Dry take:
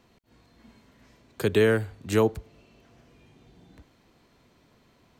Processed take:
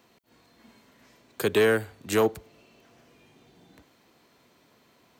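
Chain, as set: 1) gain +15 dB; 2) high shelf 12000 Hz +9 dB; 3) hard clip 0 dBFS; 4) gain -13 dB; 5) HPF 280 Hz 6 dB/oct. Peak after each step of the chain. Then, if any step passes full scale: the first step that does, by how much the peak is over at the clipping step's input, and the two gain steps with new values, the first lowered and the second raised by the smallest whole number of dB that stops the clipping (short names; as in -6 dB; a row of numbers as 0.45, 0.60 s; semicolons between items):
+5.0, +5.0, 0.0, -13.0, -11.0 dBFS; step 1, 5.0 dB; step 1 +10 dB, step 4 -8 dB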